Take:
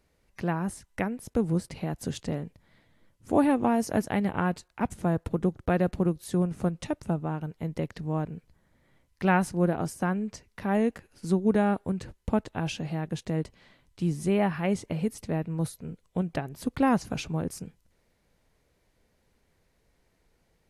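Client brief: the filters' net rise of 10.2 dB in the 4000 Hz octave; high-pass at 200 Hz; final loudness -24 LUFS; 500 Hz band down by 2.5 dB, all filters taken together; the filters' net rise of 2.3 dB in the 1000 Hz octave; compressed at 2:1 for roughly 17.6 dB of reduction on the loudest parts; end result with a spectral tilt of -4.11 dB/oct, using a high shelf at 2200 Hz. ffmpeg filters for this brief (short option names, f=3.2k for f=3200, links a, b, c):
-af "highpass=200,equalizer=f=500:t=o:g=-4.5,equalizer=f=1k:t=o:g=3.5,highshelf=f=2.2k:g=5.5,equalizer=f=4k:t=o:g=8,acompressor=threshold=-52dB:ratio=2,volume=21dB"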